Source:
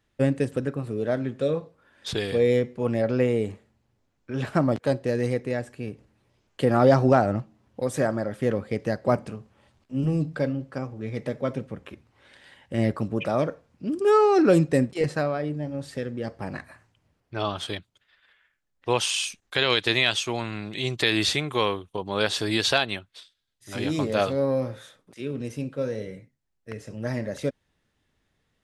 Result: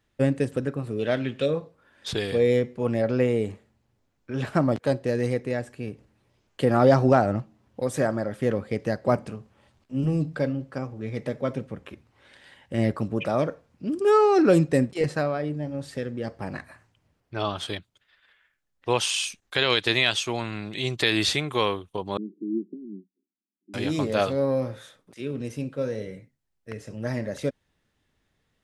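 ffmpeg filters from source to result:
ffmpeg -i in.wav -filter_complex "[0:a]asettb=1/sr,asplit=3[link_01][link_02][link_03];[link_01]atrim=end=0.994[link_04];[link_02]atrim=start=0.99:end=1.46,asetpts=PTS-STARTPTS,afade=type=in:duration=0.004:curve=qsin,afade=type=out:start_time=0.466:duration=0.004:curve=qsin,equalizer=frequency=2900:width=1.3:gain=14.5[link_05];[link_03]atrim=start=1.456[link_06];[link_04][link_05]acrossfade=duration=0.004:curve1=hsin:curve2=qsin[link_07];[link_07][link_06]acrossfade=duration=0.004:curve1=qsin:curve2=hsin,asettb=1/sr,asplit=3[link_08][link_09][link_10];[link_08]atrim=end=22.174[link_11];[link_09]atrim=start=22.17:end=23.74,asetpts=PTS-STARTPTS,afade=type=in:duration=0.004:curve=qsin,afade=type=out:start_time=1.566:duration=0.004:curve=qsin,asuperpass=centerf=260:order=12:qfactor=1.4[link_12];[link_10]atrim=start=23.736[link_13];[link_11][link_12]acrossfade=duration=0.004:curve1=hsin:curve2=qsin[link_14];[link_14][link_13]acrossfade=duration=0.004:curve1=qsin:curve2=hsin" out.wav

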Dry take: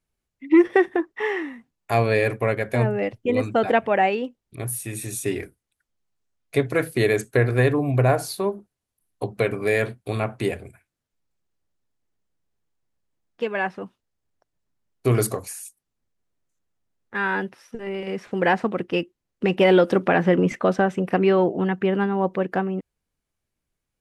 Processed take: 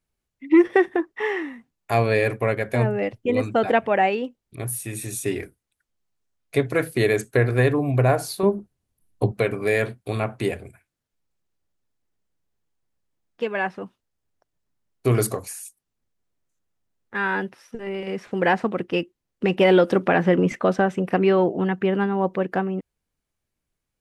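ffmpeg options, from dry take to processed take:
ffmpeg -i in.wav -filter_complex "[0:a]asettb=1/sr,asplit=3[link_01][link_02][link_03];[link_01]atrim=end=8.434[link_04];[link_02]atrim=start=8.43:end=9.32,asetpts=PTS-STARTPTS,afade=type=in:duration=0.004:curve=qsin,afade=type=out:start_time=0.886:duration=0.004:curve=qsin,lowshelf=frequency=350:gain=11.5[link_05];[link_03]atrim=start=9.316[link_06];[link_04][link_05]acrossfade=duration=0.004:curve1=hsin:curve2=qsin[link_07];[link_07][link_06]acrossfade=duration=0.004:curve1=qsin:curve2=hsin" out.wav

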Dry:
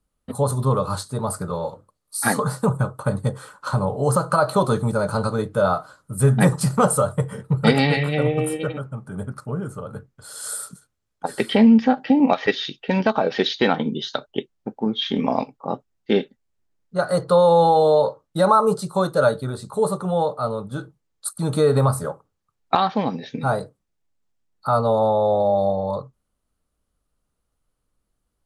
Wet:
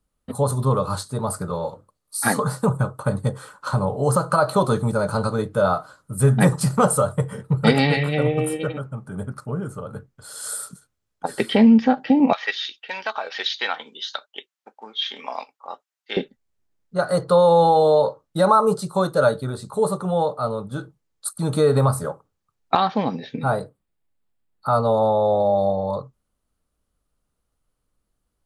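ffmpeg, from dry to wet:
ffmpeg -i in.wav -filter_complex "[0:a]asettb=1/sr,asplit=3[link_01][link_02][link_03];[link_01]atrim=end=12.334[link_04];[link_02]atrim=start=12.33:end=16.17,asetpts=PTS-STARTPTS,afade=type=in:duration=0.004:curve=qsin,afade=type=out:start_time=3.836:duration=0.004:curve=qsin,highpass=1100[link_05];[link_03]atrim=start=16.166[link_06];[link_04][link_05]acrossfade=duration=0.004:curve1=hsin:curve2=qsin[link_07];[link_07][link_06]acrossfade=duration=0.004:curve1=qsin:curve2=hsin,asettb=1/sr,asplit=3[link_08][link_09][link_10];[link_08]atrim=end=23.264[link_11];[link_09]atrim=start=23.26:end=24.71,asetpts=PTS-STARTPTS,afade=type=in:duration=0.004:curve=qsin,afade=type=out:start_time=1.446:duration=0.004:curve=qsin,equalizer=frequency=6000:width_type=o:width=0.51:gain=-10.5[link_12];[link_10]atrim=start=24.706[link_13];[link_11][link_12]acrossfade=duration=0.004:curve1=hsin:curve2=qsin[link_14];[link_14][link_13]acrossfade=duration=0.004:curve1=qsin:curve2=hsin" out.wav

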